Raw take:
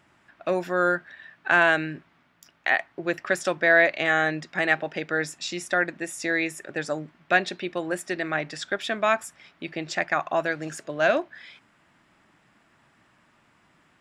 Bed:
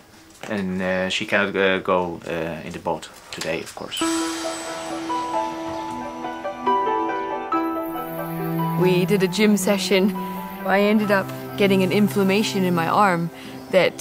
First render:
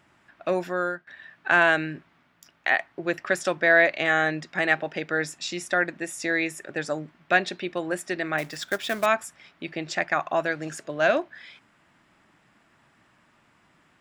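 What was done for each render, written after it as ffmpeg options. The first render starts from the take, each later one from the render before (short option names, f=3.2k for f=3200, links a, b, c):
-filter_complex "[0:a]asettb=1/sr,asplit=3[a][b][c];[a]atrim=end=8.384[d];[b]atrim=start=8.38:end=9.06,asetpts=PTS-STARTPTS,afade=t=in:d=0.004:c=qsin,afade=t=out:st=0.676:d=0.004:c=qsin,acrusher=bits=3:mode=log:mix=0:aa=0.000001[e];[c]atrim=start=9.056[f];[d][e]acrossfade=d=0.004:c1=hsin:c2=qsin[g];[g][f]acrossfade=d=0.004:c1=qsin:c2=hsin,asplit=2[h][i];[h]atrim=end=1.07,asetpts=PTS-STARTPTS,afade=t=out:st=0.61:d=0.46:silence=0.141254[j];[i]atrim=start=1.07,asetpts=PTS-STARTPTS,afade=t=in:d=0.004:c=hsin:silence=0.141254[k];[j][k]concat=n=2:v=0:a=1"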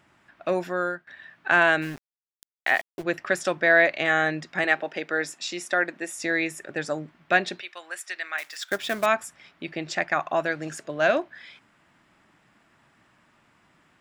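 -filter_complex "[0:a]asplit=3[a][b][c];[a]afade=t=out:st=1.81:d=0.02[d];[b]aeval=exprs='val(0)*gte(abs(val(0)),0.0141)':c=same,afade=t=in:st=1.81:d=0.02,afade=t=out:st=3.02:d=0.02[e];[c]afade=t=in:st=3.02:d=0.02[f];[d][e][f]amix=inputs=3:normalize=0,asettb=1/sr,asplit=3[g][h][i];[g]atrim=end=4.644[j];[h]atrim=start=4.64:end=6.2,asetpts=PTS-STARTPTS,afade=t=in:d=0.004:c=qsin,afade=t=out:st=1.556:d=0.004:c=qsin,highpass=250[k];[i]atrim=start=6.196[l];[j][k]acrossfade=d=0.004:c1=hsin:c2=qsin[m];[m][l]acrossfade=d=0.004:c1=qsin:c2=hsin,asettb=1/sr,asplit=3[n][o][p];[n]atrim=end=7.614[q];[o]atrim=start=7.61:end=8.71,asetpts=PTS-STARTPTS,afade=t=in:d=0.004:c=qsin,afade=t=out:st=1.096:d=0.004:c=qsin,highpass=1.3k[r];[p]atrim=start=8.706[s];[q][r]acrossfade=d=0.004:c1=hsin:c2=qsin[t];[t][s]acrossfade=d=0.004:c1=qsin:c2=hsin"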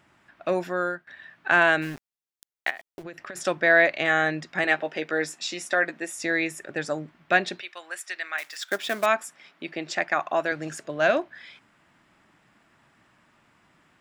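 -filter_complex "[0:a]asplit=3[a][b][c];[a]afade=t=out:st=2.69:d=0.02[d];[b]acompressor=threshold=-34dB:ratio=12:attack=3.2:release=140:knee=1:detection=peak,afade=t=in:st=2.69:d=0.02,afade=t=out:st=3.35:d=0.02[e];[c]afade=t=in:st=3.35:d=0.02[f];[d][e][f]amix=inputs=3:normalize=0,asettb=1/sr,asplit=3[g][h][i];[g]atrim=end=4.654[j];[h]atrim=start=4.65:end=6,asetpts=PTS-STARTPTS,afade=t=in:d=0.004:c=qsin,afade=t=out:st=1.346:d=0.004:c=qsin,asplit=2[k][l];[l]adelay=13,volume=-7.5dB[m];[k][m]amix=inputs=2:normalize=0,atrim=end_sample=59535[n];[i]atrim=start=5.996[o];[j][n]acrossfade=d=0.004:c1=hsin:c2=qsin[p];[p][o]acrossfade=d=0.004:c1=qsin:c2=hsin,asettb=1/sr,asplit=3[q][r][s];[q]atrim=end=8.624[t];[r]atrim=start=8.62:end=10.52,asetpts=PTS-STARTPTS,afade=t=in:d=0.004:c=qsin,afade=t=out:st=1.896:d=0.004:c=qsin,highpass=210[u];[s]atrim=start=10.516[v];[t][u]acrossfade=d=0.004:c1=hsin:c2=qsin[w];[w][v]acrossfade=d=0.004:c1=qsin:c2=hsin"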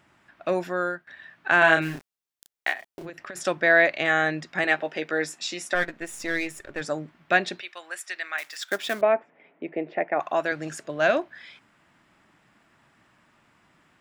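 -filter_complex "[0:a]asettb=1/sr,asplit=3[a][b][c];[a]atrim=end=1.594[d];[b]atrim=start=1.59:end=3.1,asetpts=PTS-STARTPTS,afade=t=in:d=0.004:c=qsin,afade=t=out:st=1.506:d=0.004:c=qsin,asplit=2[e][f];[f]adelay=31,volume=-3.5dB[g];[e][g]amix=inputs=2:normalize=0,atrim=end_sample=66591[h];[c]atrim=start=3.096[i];[d][h]acrossfade=d=0.004:c1=hsin:c2=qsin[j];[j][i]acrossfade=d=0.004:c1=qsin:c2=hsin,asplit=3[k][l][m];[k]afade=t=out:st=5.74:d=0.02[n];[l]aeval=exprs='if(lt(val(0),0),0.447*val(0),val(0))':c=same,afade=t=in:st=5.74:d=0.02,afade=t=out:st=6.8:d=0.02[o];[m]afade=t=in:st=6.8:d=0.02[p];[n][o][p]amix=inputs=3:normalize=0,asettb=1/sr,asplit=3[q][r][s];[q]atrim=end=9.014[t];[r]atrim=start=9.01:end=10.2,asetpts=PTS-STARTPTS,afade=t=in:d=0.004:c=qsin,afade=t=out:st=1.186:d=0.004:c=qsin,highpass=120,equalizer=f=280:t=q:w=4:g=4,equalizer=f=450:t=q:w=4:g=10,equalizer=f=650:t=q:w=4:g=4,equalizer=f=1.2k:t=q:w=4:g=-9,equalizer=f=1.6k:t=q:w=4:g=-8,lowpass=f=2.1k:w=0.5412,lowpass=f=2.1k:w=1.3066[u];[s]atrim=start=10.196[v];[t][u]acrossfade=d=0.004:c1=hsin:c2=qsin[w];[w][v]acrossfade=d=0.004:c1=qsin:c2=hsin"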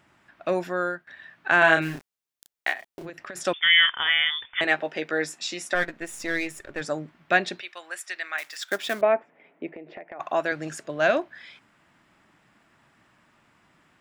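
-filter_complex "[0:a]asettb=1/sr,asplit=3[a][b][c];[a]atrim=end=3.534[d];[b]atrim=start=3.53:end=4.61,asetpts=PTS-STARTPTS,afade=t=in:d=0.004:c=qsin,afade=t=out:st=1.076:d=0.004:c=qsin,lowpass=f=3.1k:t=q:w=0.5098,lowpass=f=3.1k:t=q:w=0.6013,lowpass=f=3.1k:t=q:w=0.9,lowpass=f=3.1k:t=q:w=2.563,afreqshift=-3700[e];[c]atrim=start=4.606[f];[d][e]acrossfade=d=0.004:c1=hsin:c2=qsin[g];[g][f]acrossfade=d=0.004:c1=qsin:c2=hsin,asettb=1/sr,asplit=3[h][i][j];[h]atrim=end=9.694[k];[i]atrim=start=9.69:end=10.2,asetpts=PTS-STARTPTS,afade=t=in:d=0.004:c=qsin,afade=t=out:st=0.506:d=0.004:c=qsin,acompressor=threshold=-38dB:ratio=5:attack=3.2:release=140:knee=1:detection=peak[l];[j]atrim=start=10.196[m];[k][l]acrossfade=d=0.004:c1=hsin:c2=qsin[n];[n][m]acrossfade=d=0.004:c1=qsin:c2=hsin"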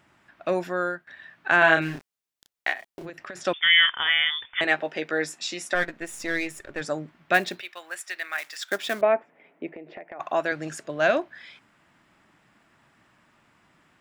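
-filter_complex "[0:a]asettb=1/sr,asplit=3[a][b][c];[a]atrim=end=1.564[d];[b]atrim=start=1.56:end=3.6,asetpts=PTS-STARTPTS,afade=t=in:d=0.004:c=qsin,afade=t=out:st=2.036:d=0.004:c=qsin,acrossover=split=6500[e][f];[f]acompressor=threshold=-56dB:ratio=4:attack=1:release=60[g];[e][g]amix=inputs=2:normalize=0[h];[c]atrim=start=3.596[i];[d][h]acrossfade=d=0.004:c1=hsin:c2=qsin[j];[j][i]acrossfade=d=0.004:c1=qsin:c2=hsin,asettb=1/sr,asplit=3[k][l][m];[k]atrim=end=7.344[n];[l]atrim=start=7.34:end=8.5,asetpts=PTS-STARTPTS,afade=t=in:d=0.004:c=qsin,afade=t=out:st=1.156:d=0.004:c=qsin,acrusher=bits=5:mode=log:mix=0:aa=0.000001[o];[m]atrim=start=8.496[p];[n][o]acrossfade=d=0.004:c1=hsin:c2=qsin[q];[q][p]acrossfade=d=0.004:c1=qsin:c2=hsin"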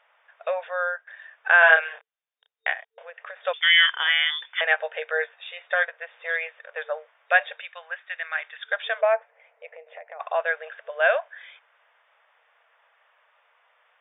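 -af "afftfilt=real='re*between(b*sr/4096,450,3700)':imag='im*between(b*sr/4096,450,3700)':win_size=4096:overlap=0.75,adynamicequalizer=threshold=0.0112:dfrequency=1600:dqfactor=7.5:tfrequency=1600:tqfactor=7.5:attack=5:release=100:ratio=0.375:range=3:mode=boostabove:tftype=bell"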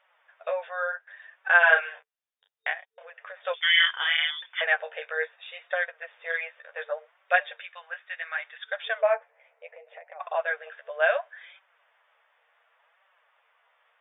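-af "flanger=delay=5.2:depth=8.6:regen=13:speed=0.69:shape=sinusoidal"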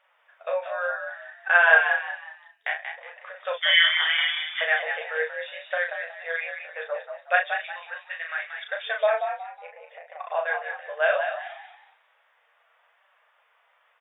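-filter_complex "[0:a]asplit=2[a][b];[b]adelay=36,volume=-5dB[c];[a][c]amix=inputs=2:normalize=0,asplit=5[d][e][f][g][h];[e]adelay=183,afreqshift=52,volume=-7dB[i];[f]adelay=366,afreqshift=104,volume=-16.6dB[j];[g]adelay=549,afreqshift=156,volume=-26.3dB[k];[h]adelay=732,afreqshift=208,volume=-35.9dB[l];[d][i][j][k][l]amix=inputs=5:normalize=0"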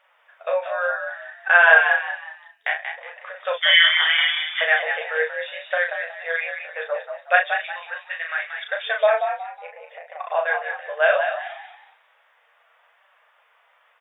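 -af "volume=4.5dB,alimiter=limit=-2dB:level=0:latency=1"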